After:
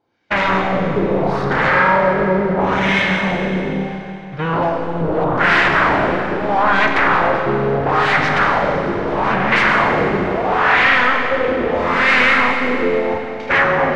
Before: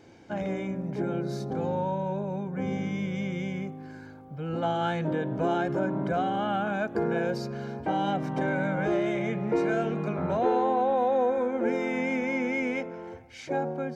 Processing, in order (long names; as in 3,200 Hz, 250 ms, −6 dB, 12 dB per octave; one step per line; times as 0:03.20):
high shelf with overshoot 2,700 Hz +14 dB, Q 1.5
in parallel at −4 dB: sine wavefolder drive 18 dB, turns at −13 dBFS
on the sum: power curve on the samples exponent 0.7
auto-filter low-pass sine 0.76 Hz 400–2,000 Hz
noise gate −18 dBFS, range −38 dB
tilt shelving filter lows −5.5 dB
four-comb reverb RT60 2.9 s, combs from 32 ms, DRR 3 dB
level −1 dB